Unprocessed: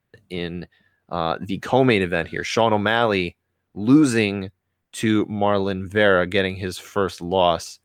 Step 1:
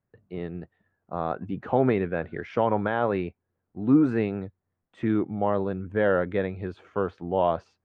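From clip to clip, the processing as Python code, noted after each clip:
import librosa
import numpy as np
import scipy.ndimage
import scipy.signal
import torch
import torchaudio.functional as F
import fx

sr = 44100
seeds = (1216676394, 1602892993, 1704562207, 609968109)

y = scipy.signal.sosfilt(scipy.signal.butter(2, 1300.0, 'lowpass', fs=sr, output='sos'), x)
y = y * 10.0 ** (-5.0 / 20.0)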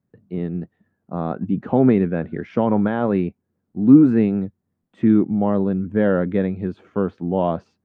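y = fx.peak_eq(x, sr, hz=210.0, db=13.5, octaves=1.6)
y = y * 10.0 ** (-1.0 / 20.0)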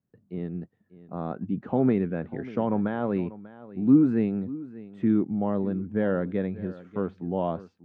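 y = x + 10.0 ** (-17.5 / 20.0) * np.pad(x, (int(592 * sr / 1000.0), 0))[:len(x)]
y = y * 10.0 ** (-7.5 / 20.0)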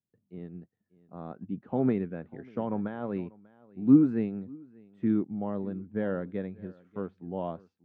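y = fx.upward_expand(x, sr, threshold_db=-38.0, expansion=1.5)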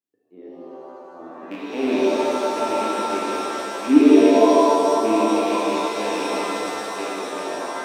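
y = fx.rattle_buzz(x, sr, strikes_db=-34.0, level_db=-23.0)
y = fx.low_shelf_res(y, sr, hz=210.0, db=-13.0, q=3.0)
y = fx.rev_shimmer(y, sr, seeds[0], rt60_s=3.5, semitones=7, shimmer_db=-2, drr_db=-6.5)
y = y * 10.0 ** (-4.0 / 20.0)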